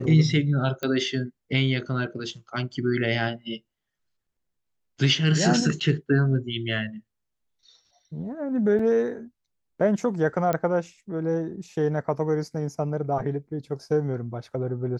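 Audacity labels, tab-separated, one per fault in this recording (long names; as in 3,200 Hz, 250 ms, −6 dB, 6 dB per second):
0.830000	0.830000	click −15 dBFS
5.800000	5.810000	drop-out 7.2 ms
8.790000	8.790000	drop-out 4 ms
10.530000	10.530000	click −13 dBFS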